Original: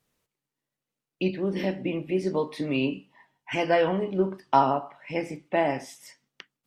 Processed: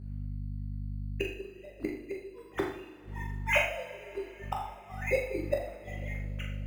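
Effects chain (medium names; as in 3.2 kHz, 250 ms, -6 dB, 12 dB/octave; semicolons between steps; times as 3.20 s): formants replaced by sine waves; hum 50 Hz, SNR 25 dB; in parallel at -10.5 dB: sample-and-hold 10×; on the sum: inverted gate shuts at -24 dBFS, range -35 dB; on a send: flutter echo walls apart 6.9 m, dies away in 0.35 s; on the sum: two-slope reverb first 0.57 s, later 4.6 s, from -20 dB, DRR -0.5 dB; trim +7 dB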